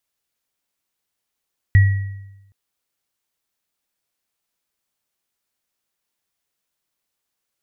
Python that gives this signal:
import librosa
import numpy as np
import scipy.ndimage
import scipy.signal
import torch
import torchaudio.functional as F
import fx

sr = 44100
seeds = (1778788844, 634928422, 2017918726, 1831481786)

y = fx.additive_free(sr, length_s=0.77, hz=98.6, level_db=-6.0, upper_db=(-13.0,), decay_s=0.99, upper_decays_s=(0.79,), upper_hz=(1920.0,))